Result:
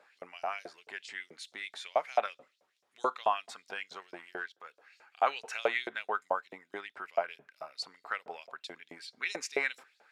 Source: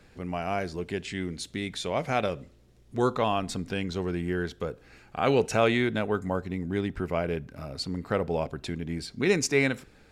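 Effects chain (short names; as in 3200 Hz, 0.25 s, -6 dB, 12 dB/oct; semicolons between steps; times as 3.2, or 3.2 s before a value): high shelf 2400 Hz -10.5 dB; 4–4.69 transient shaper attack -12 dB, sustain -8 dB; LFO high-pass saw up 4.6 Hz 600–5800 Hz; gain -2 dB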